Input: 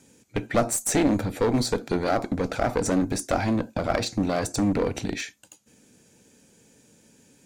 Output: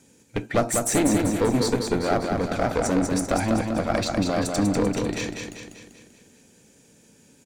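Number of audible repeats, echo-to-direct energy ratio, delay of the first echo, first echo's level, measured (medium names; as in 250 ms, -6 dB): 6, -3.0 dB, 195 ms, -4.5 dB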